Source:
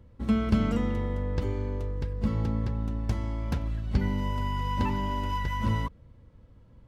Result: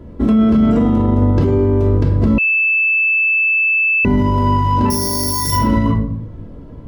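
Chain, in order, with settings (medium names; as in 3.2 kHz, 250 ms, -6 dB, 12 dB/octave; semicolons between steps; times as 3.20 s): 4.90–5.52 s: careless resampling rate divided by 8×, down filtered, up zero stuff; peaking EQ 380 Hz +13 dB 2.8 oct; simulated room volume 870 m³, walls furnished, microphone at 3 m; 2.38–4.05 s: bleep 2.63 kHz -20 dBFS; loudness maximiser +14 dB; trim -5.5 dB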